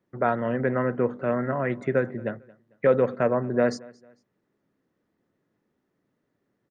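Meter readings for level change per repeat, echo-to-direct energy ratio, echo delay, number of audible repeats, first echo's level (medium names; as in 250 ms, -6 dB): -9.5 dB, -23.0 dB, 224 ms, 2, -23.5 dB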